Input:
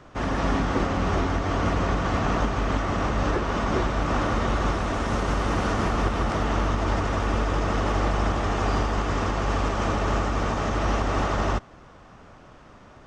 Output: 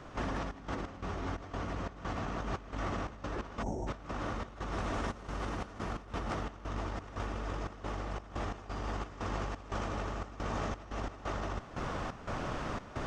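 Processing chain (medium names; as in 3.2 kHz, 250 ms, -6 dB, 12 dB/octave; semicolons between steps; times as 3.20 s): time-frequency box 3.63–3.87 s, 960–5400 Hz -25 dB; compressor with a negative ratio -36 dBFS, ratio -1; trance gate ".xx.x.xx.xx.xxx" 88 bpm -12 dB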